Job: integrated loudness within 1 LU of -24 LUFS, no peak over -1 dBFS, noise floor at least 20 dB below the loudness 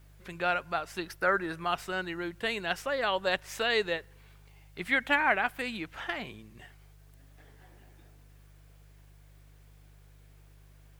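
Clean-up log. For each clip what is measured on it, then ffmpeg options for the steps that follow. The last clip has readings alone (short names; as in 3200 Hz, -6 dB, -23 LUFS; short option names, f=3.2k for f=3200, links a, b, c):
hum 50 Hz; harmonics up to 150 Hz; hum level -53 dBFS; loudness -30.5 LUFS; peak -10.5 dBFS; loudness target -24.0 LUFS
-> -af "bandreject=f=50:t=h:w=4,bandreject=f=100:t=h:w=4,bandreject=f=150:t=h:w=4"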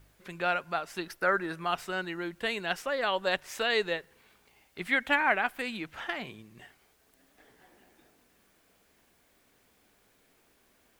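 hum none; loudness -30.5 LUFS; peak -10.5 dBFS; loudness target -24.0 LUFS
-> -af "volume=6.5dB"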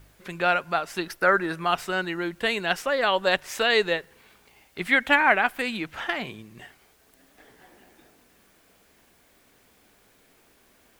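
loudness -24.0 LUFS; peak -4.0 dBFS; noise floor -61 dBFS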